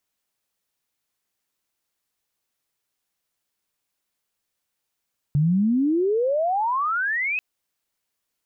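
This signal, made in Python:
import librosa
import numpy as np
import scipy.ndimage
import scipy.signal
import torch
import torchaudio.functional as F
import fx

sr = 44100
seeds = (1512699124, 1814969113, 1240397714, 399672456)

y = fx.chirp(sr, length_s=2.04, from_hz=140.0, to_hz=2600.0, law='logarithmic', from_db=-16.0, to_db=-22.0)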